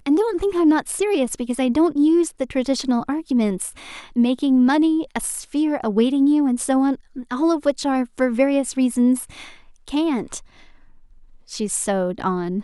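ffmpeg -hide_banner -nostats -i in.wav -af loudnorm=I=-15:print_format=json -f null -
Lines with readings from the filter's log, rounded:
"input_i" : "-20.7",
"input_tp" : "-5.0",
"input_lra" : "5.6",
"input_thresh" : "-31.5",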